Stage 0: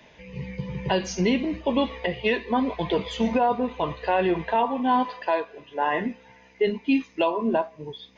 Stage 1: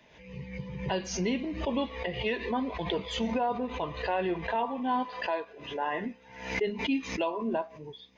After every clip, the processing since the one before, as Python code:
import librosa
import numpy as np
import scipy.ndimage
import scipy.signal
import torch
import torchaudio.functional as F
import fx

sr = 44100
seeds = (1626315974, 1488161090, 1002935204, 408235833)

y = fx.pre_swell(x, sr, db_per_s=81.0)
y = y * 10.0 ** (-7.5 / 20.0)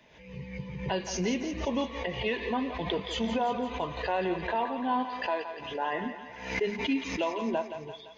y = fx.echo_thinned(x, sr, ms=171, feedback_pct=62, hz=450.0, wet_db=-9.0)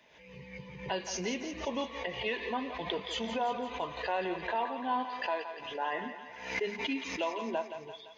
y = fx.low_shelf(x, sr, hz=260.0, db=-11.0)
y = y * 10.0 ** (-1.5 / 20.0)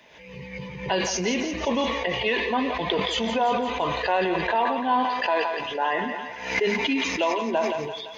y = fx.sustainer(x, sr, db_per_s=34.0)
y = y * 10.0 ** (9.0 / 20.0)